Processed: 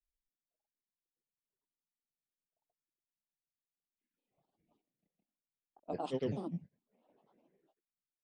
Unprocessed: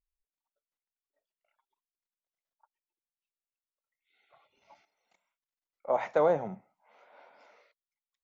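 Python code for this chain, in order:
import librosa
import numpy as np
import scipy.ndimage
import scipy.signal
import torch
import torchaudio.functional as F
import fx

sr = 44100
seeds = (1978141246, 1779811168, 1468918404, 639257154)

y = fx.env_lowpass(x, sr, base_hz=670.0, full_db=-30.0)
y = fx.curve_eq(y, sr, hz=(110.0, 220.0, 720.0, 1500.0, 2700.0), db=(0, 8, -14, -23, 4))
y = fx.granulator(y, sr, seeds[0], grain_ms=100.0, per_s=20.0, spray_ms=100.0, spread_st=7)
y = F.gain(torch.from_numpy(y), -1.0).numpy()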